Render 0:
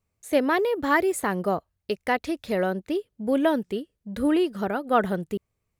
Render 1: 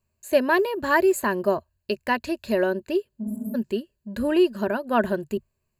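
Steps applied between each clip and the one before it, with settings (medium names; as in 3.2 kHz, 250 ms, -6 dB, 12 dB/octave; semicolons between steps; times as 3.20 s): rippled EQ curve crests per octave 1.4, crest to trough 11 dB; spectral replace 3.26–3.52 s, 200–7000 Hz before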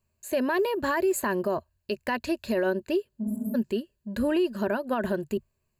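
peak limiter -18 dBFS, peak gain reduction 10.5 dB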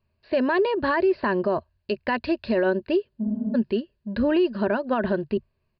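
distance through air 77 m; resampled via 11.025 kHz; trim +4 dB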